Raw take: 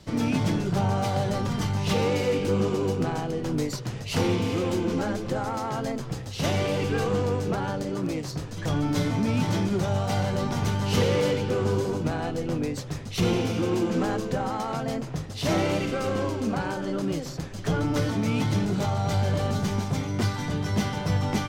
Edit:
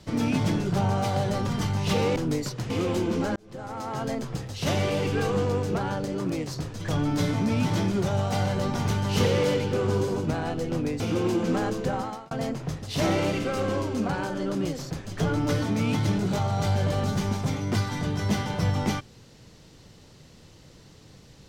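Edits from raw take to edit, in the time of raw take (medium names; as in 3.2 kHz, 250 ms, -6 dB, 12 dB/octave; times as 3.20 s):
2.16–3.43 s: delete
3.97–4.47 s: delete
5.13–5.85 s: fade in
12.77–13.47 s: delete
14.43–14.78 s: fade out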